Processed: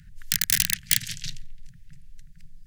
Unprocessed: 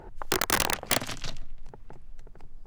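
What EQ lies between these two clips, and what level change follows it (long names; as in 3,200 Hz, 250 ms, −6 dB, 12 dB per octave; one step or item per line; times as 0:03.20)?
Chebyshev band-stop filter 170–1,700 Hz, order 4
parametric band 290 Hz +14 dB 1.5 octaves
high-shelf EQ 3,900 Hz +11 dB
−2.0 dB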